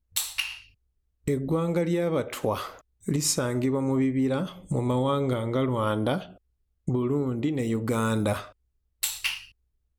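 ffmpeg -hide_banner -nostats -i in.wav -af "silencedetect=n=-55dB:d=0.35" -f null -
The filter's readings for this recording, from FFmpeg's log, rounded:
silence_start: 0.72
silence_end: 1.25 | silence_duration: 0.53
silence_start: 6.38
silence_end: 6.87 | silence_duration: 0.50
silence_start: 8.52
silence_end: 9.02 | silence_duration: 0.50
silence_start: 9.52
silence_end: 9.99 | silence_duration: 0.47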